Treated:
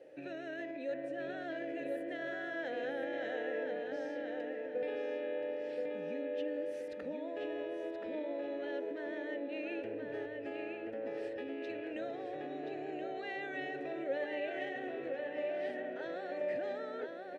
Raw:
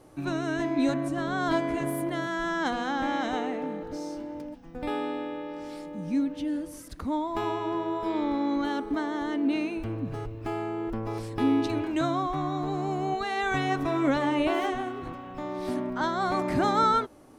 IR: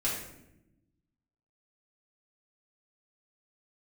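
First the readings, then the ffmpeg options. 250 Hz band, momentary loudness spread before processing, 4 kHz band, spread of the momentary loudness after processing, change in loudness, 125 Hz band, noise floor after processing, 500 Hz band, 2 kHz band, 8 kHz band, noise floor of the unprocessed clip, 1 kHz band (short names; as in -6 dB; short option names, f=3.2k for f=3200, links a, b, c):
-15.5 dB, 11 LU, -14.0 dB, 4 LU, -10.5 dB, -25.0 dB, -44 dBFS, -5.0 dB, -8.0 dB, n/a, -44 dBFS, -18.0 dB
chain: -filter_complex "[0:a]lowshelf=f=83:g=-8.5,alimiter=level_in=1dB:limit=-24dB:level=0:latency=1:release=36,volume=-1dB,acompressor=threshold=-34dB:ratio=3,asplit=3[a][b][c];[a]bandpass=f=530:t=q:w=8,volume=0dB[d];[b]bandpass=f=1.84k:t=q:w=8,volume=-6dB[e];[c]bandpass=f=2.48k:t=q:w=8,volume=-9dB[f];[d][e][f]amix=inputs=3:normalize=0,asplit=2[g][h];[h]adelay=1027,lowpass=f=3.9k:p=1,volume=-3.5dB,asplit=2[i][j];[j]adelay=1027,lowpass=f=3.9k:p=1,volume=0.37,asplit=2[k][l];[l]adelay=1027,lowpass=f=3.9k:p=1,volume=0.37,asplit=2[m][n];[n]adelay=1027,lowpass=f=3.9k:p=1,volume=0.37,asplit=2[o][p];[p]adelay=1027,lowpass=f=3.9k:p=1,volume=0.37[q];[g][i][k][m][o][q]amix=inputs=6:normalize=0,volume=9.5dB"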